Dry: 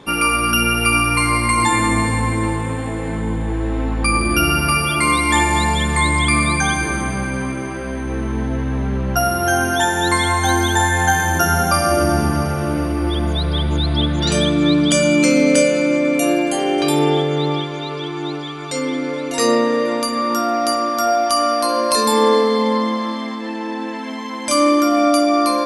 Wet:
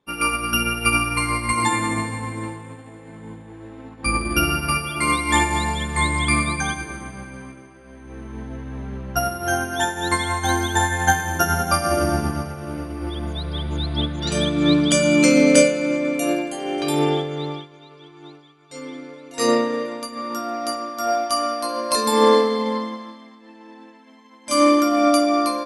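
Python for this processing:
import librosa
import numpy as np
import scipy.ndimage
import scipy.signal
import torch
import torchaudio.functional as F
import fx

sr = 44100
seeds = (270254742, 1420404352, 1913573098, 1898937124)

y = fx.highpass(x, sr, hz=83.0, slope=24, at=(1.53, 4.06))
y = fx.upward_expand(y, sr, threshold_db=-32.0, expansion=2.5)
y = y * 10.0 ** (2.0 / 20.0)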